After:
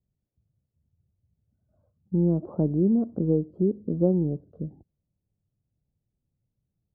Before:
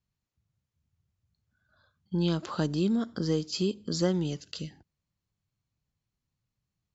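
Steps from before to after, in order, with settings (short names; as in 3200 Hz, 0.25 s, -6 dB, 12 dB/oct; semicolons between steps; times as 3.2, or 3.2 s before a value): inverse Chebyshev low-pass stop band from 2200 Hz, stop band 60 dB; gain +5 dB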